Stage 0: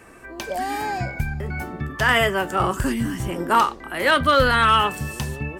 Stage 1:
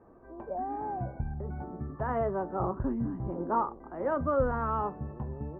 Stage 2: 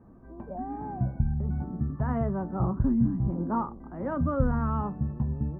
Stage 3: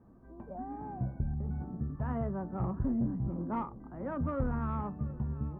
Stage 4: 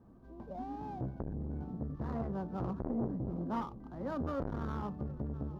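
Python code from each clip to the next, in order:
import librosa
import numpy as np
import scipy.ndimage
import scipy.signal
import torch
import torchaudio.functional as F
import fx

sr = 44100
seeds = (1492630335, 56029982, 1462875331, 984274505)

y1 = scipy.signal.sosfilt(scipy.signal.butter(4, 1000.0, 'lowpass', fs=sr, output='sos'), x)
y1 = fx.hum_notches(y1, sr, base_hz=50, count=3)
y1 = F.gain(torch.from_numpy(y1), -7.5).numpy()
y2 = fx.low_shelf_res(y1, sr, hz=300.0, db=9.5, q=1.5)
y2 = F.gain(torch.from_numpy(y2), -2.0).numpy()
y3 = fx.tube_stage(y2, sr, drive_db=18.0, bias=0.25)
y3 = y3 + 10.0 ** (-19.0 / 20.0) * np.pad(y3, (int(720 * sr / 1000.0), 0))[:len(y3)]
y3 = F.gain(torch.from_numpy(y3), -5.0).numpy()
y4 = scipy.ndimage.median_filter(y3, 15, mode='constant')
y4 = fx.transformer_sat(y4, sr, knee_hz=450.0)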